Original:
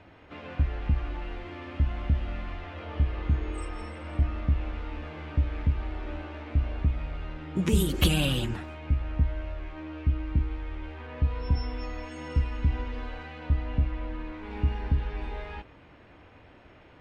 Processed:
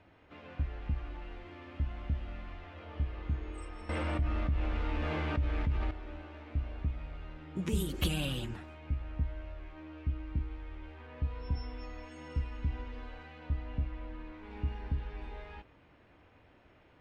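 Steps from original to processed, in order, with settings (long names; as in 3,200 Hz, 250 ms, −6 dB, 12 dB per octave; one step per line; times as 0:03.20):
0:03.89–0:05.91: envelope flattener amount 70%
level −8.5 dB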